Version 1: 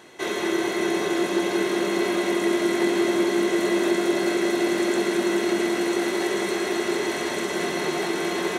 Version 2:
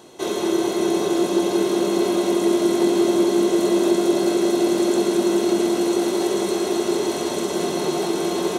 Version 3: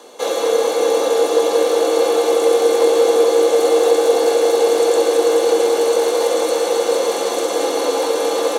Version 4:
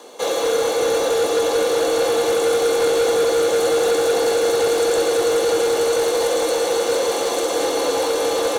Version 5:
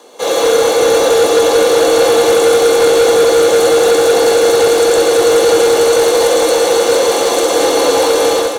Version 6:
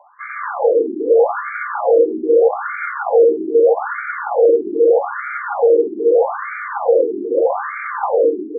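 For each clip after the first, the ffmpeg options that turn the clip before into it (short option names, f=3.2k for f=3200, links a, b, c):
-af "equalizer=f=1.9k:w=1.5:g=-14.5,volume=4.5dB"
-af "afreqshift=120,volume=4.5dB"
-filter_complex "[0:a]acrossover=split=1600[a][b];[a]asoftclip=type=tanh:threshold=-14dB[c];[b]acrusher=bits=5:mode=log:mix=0:aa=0.000001[d];[c][d]amix=inputs=2:normalize=0"
-af "dynaudnorm=f=100:g=5:m=11dB"
-af "afftfilt=real='re*between(b*sr/1024,290*pow(1700/290,0.5+0.5*sin(2*PI*0.8*pts/sr))/1.41,290*pow(1700/290,0.5+0.5*sin(2*PI*0.8*pts/sr))*1.41)':imag='im*between(b*sr/1024,290*pow(1700/290,0.5+0.5*sin(2*PI*0.8*pts/sr))/1.41,290*pow(1700/290,0.5+0.5*sin(2*PI*0.8*pts/sr))*1.41)':win_size=1024:overlap=0.75"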